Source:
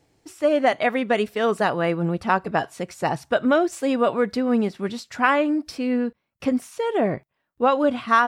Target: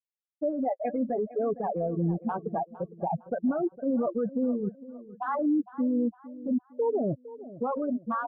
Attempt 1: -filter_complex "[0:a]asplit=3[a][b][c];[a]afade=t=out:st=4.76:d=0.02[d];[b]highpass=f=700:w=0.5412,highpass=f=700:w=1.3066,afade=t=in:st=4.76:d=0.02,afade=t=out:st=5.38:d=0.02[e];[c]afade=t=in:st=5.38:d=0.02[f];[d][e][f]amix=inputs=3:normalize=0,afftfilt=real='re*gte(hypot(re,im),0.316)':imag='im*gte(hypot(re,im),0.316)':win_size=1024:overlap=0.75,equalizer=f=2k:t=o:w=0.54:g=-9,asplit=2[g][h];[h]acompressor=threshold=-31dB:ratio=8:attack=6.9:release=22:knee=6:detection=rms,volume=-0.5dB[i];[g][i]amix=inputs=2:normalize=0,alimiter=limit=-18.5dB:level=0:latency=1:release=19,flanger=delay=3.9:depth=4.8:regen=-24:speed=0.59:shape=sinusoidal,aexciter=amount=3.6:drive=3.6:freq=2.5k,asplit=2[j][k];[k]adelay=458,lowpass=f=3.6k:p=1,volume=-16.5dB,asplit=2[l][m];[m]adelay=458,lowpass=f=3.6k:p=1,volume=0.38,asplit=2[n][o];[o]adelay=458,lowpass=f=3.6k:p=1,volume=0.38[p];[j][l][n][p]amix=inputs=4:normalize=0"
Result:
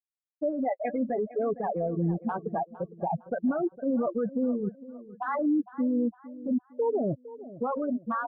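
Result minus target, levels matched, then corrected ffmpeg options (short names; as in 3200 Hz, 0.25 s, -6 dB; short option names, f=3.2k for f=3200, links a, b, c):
2000 Hz band +3.0 dB
-filter_complex "[0:a]asplit=3[a][b][c];[a]afade=t=out:st=4.76:d=0.02[d];[b]highpass=f=700:w=0.5412,highpass=f=700:w=1.3066,afade=t=in:st=4.76:d=0.02,afade=t=out:st=5.38:d=0.02[e];[c]afade=t=in:st=5.38:d=0.02[f];[d][e][f]amix=inputs=3:normalize=0,afftfilt=real='re*gte(hypot(re,im),0.316)':imag='im*gte(hypot(re,im),0.316)':win_size=1024:overlap=0.75,equalizer=f=2k:t=o:w=0.54:g=-21,asplit=2[g][h];[h]acompressor=threshold=-31dB:ratio=8:attack=6.9:release=22:knee=6:detection=rms,volume=-0.5dB[i];[g][i]amix=inputs=2:normalize=0,alimiter=limit=-18.5dB:level=0:latency=1:release=19,flanger=delay=3.9:depth=4.8:regen=-24:speed=0.59:shape=sinusoidal,aexciter=amount=3.6:drive=3.6:freq=2.5k,asplit=2[j][k];[k]adelay=458,lowpass=f=3.6k:p=1,volume=-16.5dB,asplit=2[l][m];[m]adelay=458,lowpass=f=3.6k:p=1,volume=0.38,asplit=2[n][o];[o]adelay=458,lowpass=f=3.6k:p=1,volume=0.38[p];[j][l][n][p]amix=inputs=4:normalize=0"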